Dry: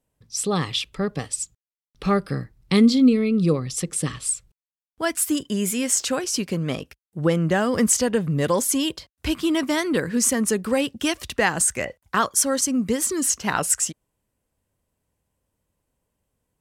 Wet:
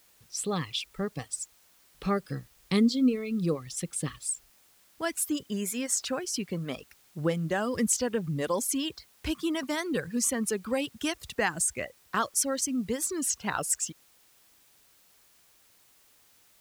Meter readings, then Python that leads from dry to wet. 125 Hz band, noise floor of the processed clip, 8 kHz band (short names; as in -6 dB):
-8.5 dB, -62 dBFS, -7.5 dB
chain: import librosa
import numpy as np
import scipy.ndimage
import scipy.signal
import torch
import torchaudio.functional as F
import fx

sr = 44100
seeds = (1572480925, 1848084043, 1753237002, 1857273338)

y = fx.dereverb_blind(x, sr, rt60_s=0.85)
y = fx.dmg_noise_colour(y, sr, seeds[0], colour='white', level_db=-55.0)
y = F.gain(torch.from_numpy(y), -7.0).numpy()